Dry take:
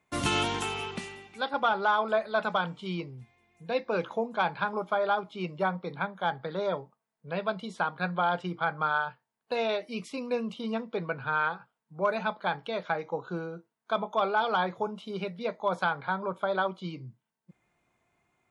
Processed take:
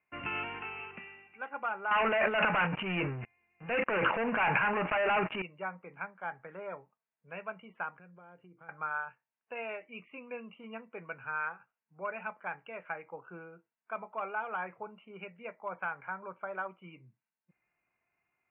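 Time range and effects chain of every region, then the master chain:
1.91–5.42 sample leveller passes 5 + transient shaper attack -4 dB, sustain +11 dB
7.99–8.69 band shelf 1500 Hz -14 dB 2.6 oct + compressor 3:1, threshold -41 dBFS
whole clip: Chebyshev low-pass 2800 Hz, order 8; tilt shelf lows -7 dB, about 1200 Hz; gain -7.5 dB

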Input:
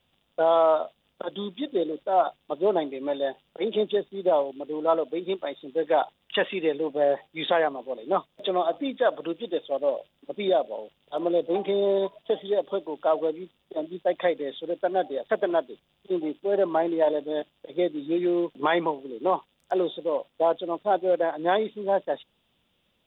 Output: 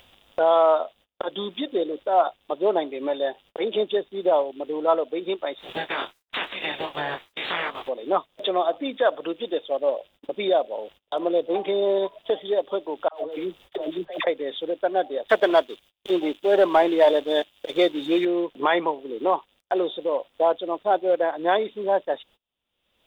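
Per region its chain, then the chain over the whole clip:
5.58–7.87 spectral limiter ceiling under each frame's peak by 29 dB + level quantiser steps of 9 dB + detuned doubles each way 13 cents
13.08–14.27 bell 240 Hz -7 dB 0.52 oct + negative-ratio compressor -35 dBFS + dispersion lows, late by 60 ms, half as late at 790 Hz
15.28–18.25 high shelf 2000 Hz +10.5 dB + sample leveller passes 1
whole clip: gate -52 dBFS, range -32 dB; bell 160 Hz -9 dB 1.5 oct; upward compressor, threshold -26 dBFS; gain +3 dB

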